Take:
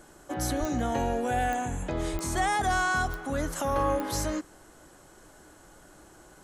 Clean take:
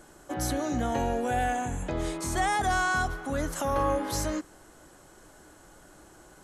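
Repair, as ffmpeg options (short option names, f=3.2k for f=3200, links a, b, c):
-filter_complex "[0:a]adeclick=t=4,asplit=3[a][b][c];[a]afade=t=out:st=0.59:d=0.02[d];[b]highpass=f=140:w=0.5412,highpass=f=140:w=1.3066,afade=t=in:st=0.59:d=0.02,afade=t=out:st=0.71:d=0.02[e];[c]afade=t=in:st=0.71:d=0.02[f];[d][e][f]amix=inputs=3:normalize=0,asplit=3[g][h][i];[g]afade=t=out:st=2.12:d=0.02[j];[h]highpass=f=140:w=0.5412,highpass=f=140:w=1.3066,afade=t=in:st=2.12:d=0.02,afade=t=out:st=2.24:d=0.02[k];[i]afade=t=in:st=2.24:d=0.02[l];[j][k][l]amix=inputs=3:normalize=0"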